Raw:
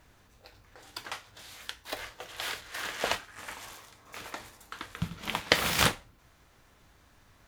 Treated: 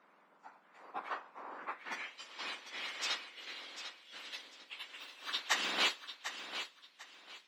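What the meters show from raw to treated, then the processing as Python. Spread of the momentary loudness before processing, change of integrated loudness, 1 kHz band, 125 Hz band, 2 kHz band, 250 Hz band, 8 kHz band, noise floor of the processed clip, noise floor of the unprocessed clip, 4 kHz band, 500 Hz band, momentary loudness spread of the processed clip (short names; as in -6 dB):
19 LU, -7.0 dB, -6.0 dB, under -30 dB, -5.5 dB, -13.5 dB, -8.5 dB, -67 dBFS, -62 dBFS, -4.0 dB, -12.5 dB, 19 LU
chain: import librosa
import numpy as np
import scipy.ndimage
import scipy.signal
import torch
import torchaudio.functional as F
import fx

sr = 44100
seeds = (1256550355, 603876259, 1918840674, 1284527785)

y = fx.octave_mirror(x, sr, pivot_hz=1900.0)
y = fx.echo_thinned(y, sr, ms=747, feedback_pct=27, hz=210.0, wet_db=-10.0)
y = fx.filter_sweep_bandpass(y, sr, from_hz=1200.0, to_hz=3600.0, start_s=1.55, end_s=2.29, q=1.9)
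y = y * 10.0 ** (5.5 / 20.0)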